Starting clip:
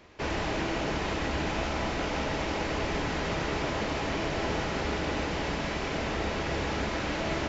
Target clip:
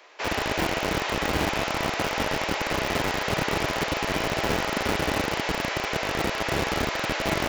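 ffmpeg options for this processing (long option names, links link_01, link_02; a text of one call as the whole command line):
ffmpeg -i in.wav -filter_complex "[0:a]highpass=65,acrossover=split=450|1300[link_01][link_02][link_03];[link_01]acrusher=bits=4:mix=0:aa=0.000001[link_04];[link_02]asoftclip=type=tanh:threshold=-34.5dB[link_05];[link_04][link_05][link_03]amix=inputs=3:normalize=0,volume=6dB" out.wav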